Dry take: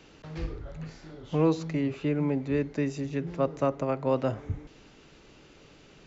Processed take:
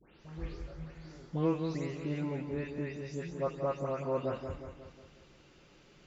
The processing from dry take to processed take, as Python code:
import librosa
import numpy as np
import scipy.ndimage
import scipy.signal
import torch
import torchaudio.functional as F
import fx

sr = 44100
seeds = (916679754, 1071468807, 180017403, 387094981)

y = fx.spec_delay(x, sr, highs='late', ms=256)
y = fx.echo_feedback(y, sr, ms=180, feedback_pct=52, wet_db=-8.0)
y = y * librosa.db_to_amplitude(-6.0)